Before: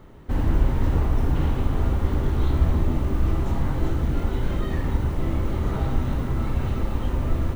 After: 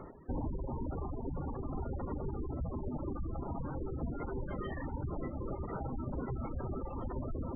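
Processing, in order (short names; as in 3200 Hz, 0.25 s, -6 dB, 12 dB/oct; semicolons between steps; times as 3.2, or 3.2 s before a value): low shelf 84 Hz -8.5 dB; spectral gate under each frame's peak -25 dB strong; reverb RT60 0.35 s, pre-delay 0.11 s, DRR 19 dB; reverse; upward compressor, threshold -31 dBFS; reverse; tone controls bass -4 dB, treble -9 dB; de-hum 108.9 Hz, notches 33; on a send: diffused feedback echo 0.589 s, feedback 44%, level -12 dB; on the sum: limiter -27 dBFS, peak gain reduction 10.5 dB; reverb removal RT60 1.5 s; spectral gate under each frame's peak -20 dB strong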